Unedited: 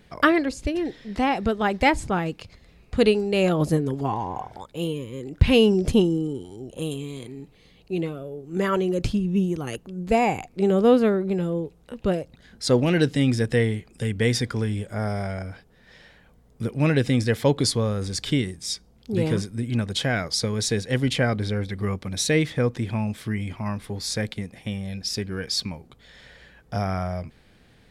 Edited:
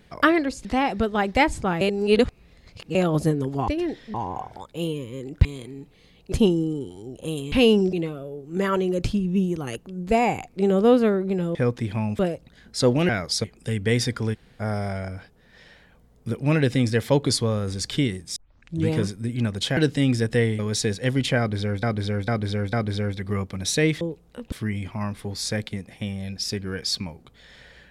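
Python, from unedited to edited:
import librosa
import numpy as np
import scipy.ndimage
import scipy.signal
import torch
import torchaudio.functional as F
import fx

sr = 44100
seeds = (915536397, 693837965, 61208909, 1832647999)

y = fx.edit(x, sr, fx.move(start_s=0.65, length_s=0.46, to_s=4.14),
    fx.reverse_span(start_s=2.27, length_s=1.14),
    fx.swap(start_s=5.45, length_s=0.41, other_s=7.06, other_length_s=0.87),
    fx.swap(start_s=11.55, length_s=0.51, other_s=22.53, other_length_s=0.64),
    fx.swap(start_s=12.96, length_s=0.82, other_s=20.11, other_length_s=0.35),
    fx.room_tone_fill(start_s=14.68, length_s=0.26, crossfade_s=0.02),
    fx.tape_start(start_s=18.7, length_s=0.53),
    fx.repeat(start_s=21.25, length_s=0.45, count=4), tone=tone)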